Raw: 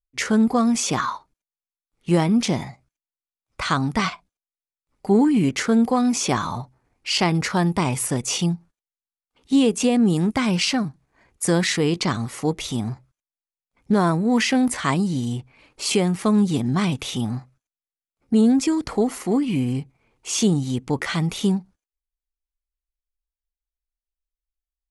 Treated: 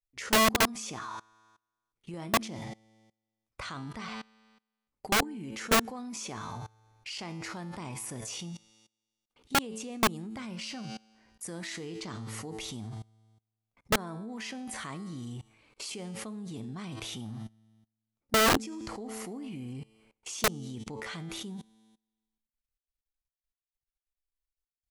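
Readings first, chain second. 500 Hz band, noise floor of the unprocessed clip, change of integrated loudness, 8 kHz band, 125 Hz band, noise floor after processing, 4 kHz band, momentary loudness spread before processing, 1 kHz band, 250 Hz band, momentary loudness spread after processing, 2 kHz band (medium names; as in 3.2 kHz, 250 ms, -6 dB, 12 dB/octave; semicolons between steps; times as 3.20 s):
-11.0 dB, under -85 dBFS, -11.0 dB, -8.0 dB, -16.5 dB, under -85 dBFS, -7.0 dB, 10 LU, -6.5 dB, -18.0 dB, 18 LU, -5.0 dB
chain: feedback comb 110 Hz, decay 0.92 s, harmonics all, mix 70%; level held to a coarse grid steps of 24 dB; integer overflow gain 25.5 dB; trim +8.5 dB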